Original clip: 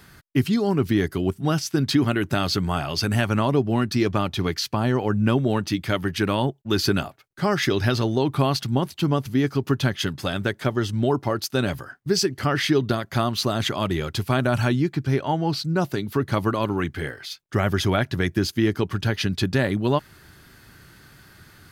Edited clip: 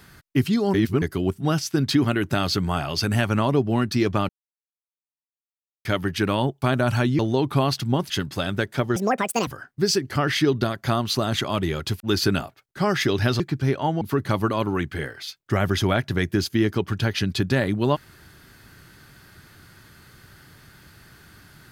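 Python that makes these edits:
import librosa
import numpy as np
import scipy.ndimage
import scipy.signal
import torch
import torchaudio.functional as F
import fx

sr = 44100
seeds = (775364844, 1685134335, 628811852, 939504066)

y = fx.edit(x, sr, fx.reverse_span(start_s=0.74, length_s=0.28),
    fx.silence(start_s=4.29, length_s=1.56),
    fx.swap(start_s=6.62, length_s=1.4, other_s=14.28, other_length_s=0.57),
    fx.cut(start_s=8.93, length_s=1.04),
    fx.speed_span(start_s=10.83, length_s=0.92, speed=1.8),
    fx.cut(start_s=15.46, length_s=0.58), tone=tone)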